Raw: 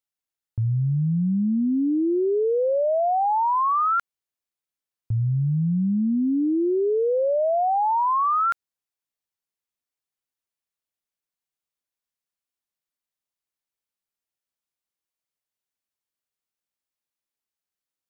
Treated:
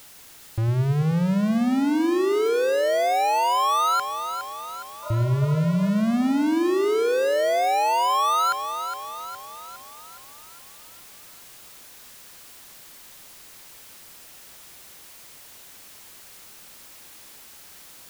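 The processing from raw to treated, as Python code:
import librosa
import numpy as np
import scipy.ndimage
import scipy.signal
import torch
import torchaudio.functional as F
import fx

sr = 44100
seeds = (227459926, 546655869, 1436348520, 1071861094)

y = fx.power_curve(x, sr, exponent=0.35)
y = fx.spec_repair(y, sr, seeds[0], start_s=5.06, length_s=0.81, low_hz=480.0, high_hz=1700.0, source='after')
y = fx.echo_split(y, sr, split_hz=400.0, low_ms=103, high_ms=413, feedback_pct=52, wet_db=-9)
y = y * 10.0 ** (-2.0 / 20.0)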